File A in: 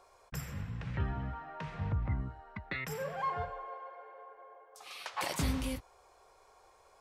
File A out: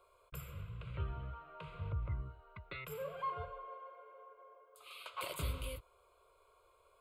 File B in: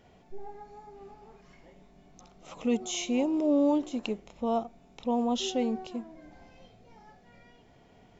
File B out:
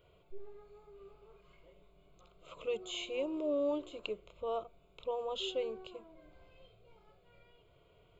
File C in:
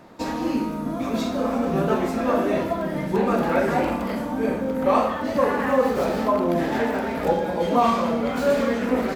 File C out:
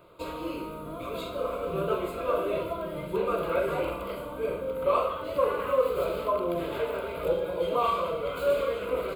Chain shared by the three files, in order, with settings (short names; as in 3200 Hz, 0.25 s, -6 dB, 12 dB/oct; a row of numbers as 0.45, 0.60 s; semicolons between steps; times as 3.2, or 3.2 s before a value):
high shelf 9000 Hz +3 dB; fixed phaser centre 1200 Hz, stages 8; gain -3.5 dB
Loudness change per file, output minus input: -6.0, -8.5, -6.5 LU